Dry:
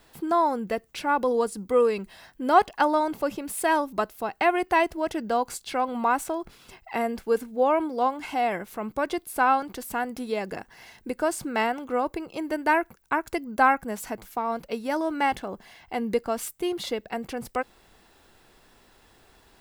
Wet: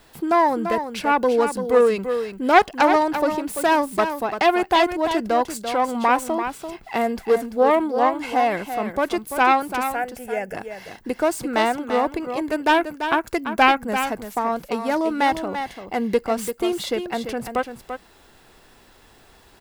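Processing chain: self-modulated delay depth 0.18 ms; 9.9–10.55 fixed phaser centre 1100 Hz, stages 6; echo 0.34 s -8.5 dB; gain +5 dB

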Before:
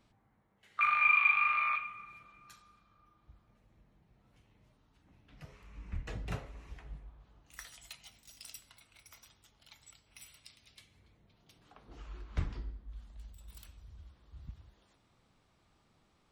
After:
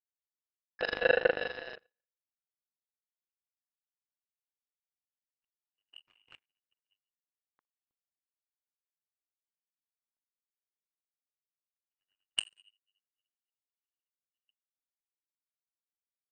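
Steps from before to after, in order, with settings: inverted band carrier 2900 Hz; power-law curve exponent 3; low-pass opened by the level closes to 1900 Hz, open at -45.5 dBFS; gain +8 dB

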